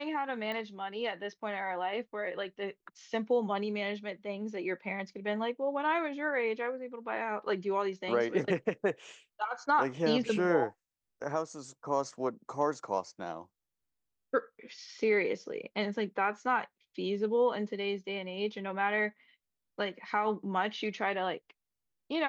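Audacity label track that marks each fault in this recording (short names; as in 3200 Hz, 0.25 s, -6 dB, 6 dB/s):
0.520000	0.520000	pop -25 dBFS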